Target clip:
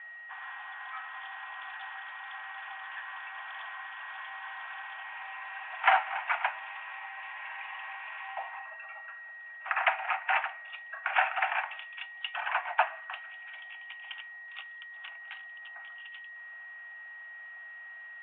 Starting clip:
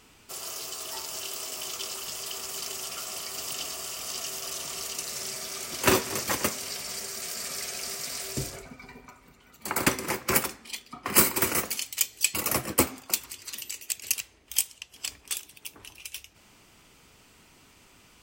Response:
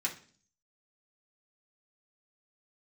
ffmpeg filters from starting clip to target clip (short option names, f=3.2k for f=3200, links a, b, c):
-af "aeval=exprs='val(0)+0.00562*sin(2*PI*1500*n/s)':c=same,highpass=f=330:t=q:w=0.5412,highpass=f=330:t=q:w=1.307,lowpass=f=2.2k:t=q:w=0.5176,lowpass=f=2.2k:t=q:w=0.7071,lowpass=f=2.2k:t=q:w=1.932,afreqshift=390,volume=1.5dB" -ar 8000 -c:a pcm_mulaw